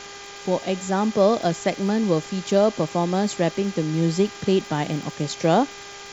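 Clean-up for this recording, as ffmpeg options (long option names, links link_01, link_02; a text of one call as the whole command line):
ffmpeg -i in.wav -af "adeclick=threshold=4,bandreject=frequency=401.6:width_type=h:width=4,bandreject=frequency=803.2:width_type=h:width=4,bandreject=frequency=1204.8:width_type=h:width=4,bandreject=frequency=1606.4:width_type=h:width=4,bandreject=frequency=2008:width_type=h:width=4,bandreject=frequency=2409.6:width_type=h:width=4,bandreject=frequency=3200:width=30,afftdn=noise_reduction=28:noise_floor=-39" out.wav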